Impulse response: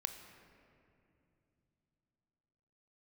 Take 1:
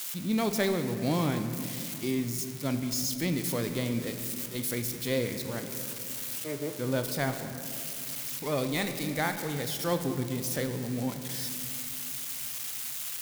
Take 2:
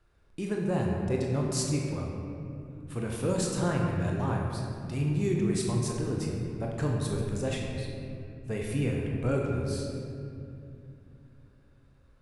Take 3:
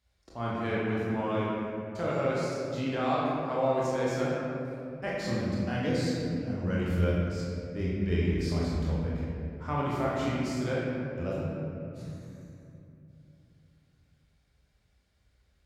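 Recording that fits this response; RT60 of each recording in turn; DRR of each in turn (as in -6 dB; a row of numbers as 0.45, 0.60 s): 1; 2.8, 2.7, 2.7 s; 7.0, -1.5, -7.0 dB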